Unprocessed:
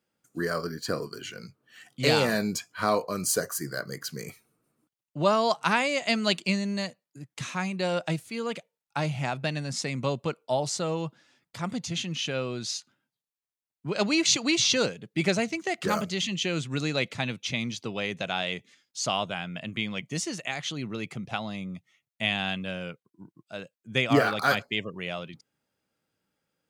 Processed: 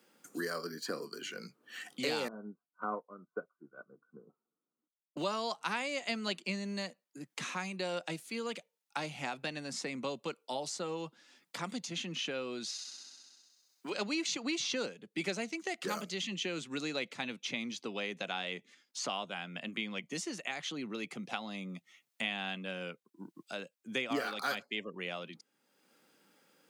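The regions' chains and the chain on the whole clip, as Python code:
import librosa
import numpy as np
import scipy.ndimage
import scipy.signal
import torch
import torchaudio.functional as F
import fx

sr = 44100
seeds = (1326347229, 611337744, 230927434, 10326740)

y = fx.chain(x, sr, fx.cheby1_lowpass(hz=1500.0, order=10),
    fx.upward_expand(threshold_db=-42.0, expansion=2.5), at=(2.28, 5.17))
y = fx.chain(y, sr, fx.highpass(hz=370.0, slope=12),
    fx.room_flutter(wall_m=11.1, rt60_s=1.1), at=(12.72, 13.94))
y = scipy.signal.sosfilt(scipy.signal.butter(4, 200.0, 'highpass', fs=sr, output='sos'), y)
y = fx.notch(y, sr, hz=640.0, q=13.0)
y = fx.band_squash(y, sr, depth_pct=70)
y = F.gain(torch.from_numpy(y), -8.0).numpy()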